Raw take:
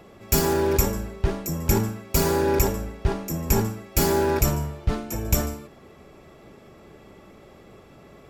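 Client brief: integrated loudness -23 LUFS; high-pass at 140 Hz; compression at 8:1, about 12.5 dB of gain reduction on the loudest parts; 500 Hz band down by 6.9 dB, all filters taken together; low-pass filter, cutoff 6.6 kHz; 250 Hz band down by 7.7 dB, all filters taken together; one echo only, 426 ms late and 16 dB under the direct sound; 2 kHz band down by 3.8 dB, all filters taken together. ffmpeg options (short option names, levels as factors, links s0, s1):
-af "highpass=140,lowpass=6600,equalizer=f=250:t=o:g=-8.5,equalizer=f=500:t=o:g=-5.5,equalizer=f=2000:t=o:g=-4.5,acompressor=threshold=0.0141:ratio=8,aecho=1:1:426:0.158,volume=8.41"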